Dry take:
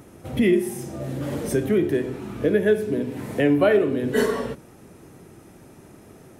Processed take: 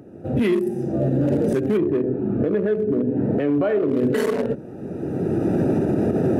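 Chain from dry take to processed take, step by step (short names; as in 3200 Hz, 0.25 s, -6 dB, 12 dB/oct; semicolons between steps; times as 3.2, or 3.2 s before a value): Wiener smoothing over 41 samples; recorder AGC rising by 21 dB/s; HPF 92 Hz; low shelf 190 Hz -7.5 dB; limiter -19.5 dBFS, peak gain reduction 11 dB; 1.77–3.89 LPF 1100 Hz 6 dB/oct; gain +7.5 dB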